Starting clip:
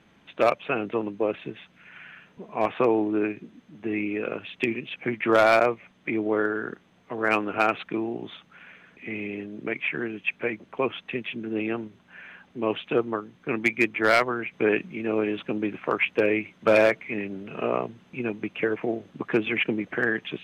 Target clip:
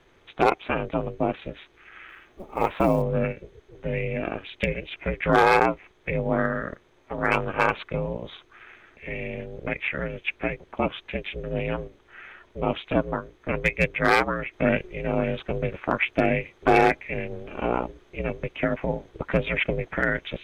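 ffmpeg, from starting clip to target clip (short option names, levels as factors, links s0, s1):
-filter_complex "[0:a]asplit=3[s0][s1][s2];[s0]afade=t=out:st=2.08:d=0.02[s3];[s1]acrusher=bits=8:mode=log:mix=0:aa=0.000001,afade=t=in:st=2.08:d=0.02,afade=t=out:st=3.01:d=0.02[s4];[s2]afade=t=in:st=3.01:d=0.02[s5];[s3][s4][s5]amix=inputs=3:normalize=0,aeval=exprs='val(0)*sin(2*PI*180*n/s)':c=same,bandreject=f=2800:w=15,volume=1.5"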